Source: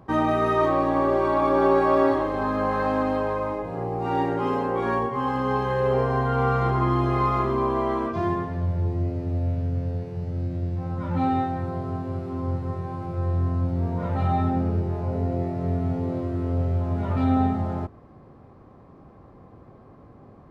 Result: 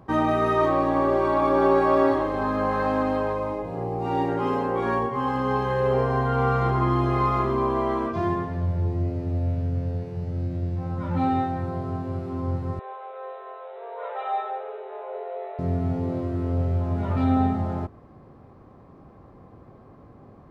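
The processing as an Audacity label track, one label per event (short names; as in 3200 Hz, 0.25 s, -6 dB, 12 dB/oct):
3.320000	4.290000	bell 1500 Hz -5 dB 0.82 oct
12.790000	15.590000	brick-wall FIR band-pass 390–4000 Hz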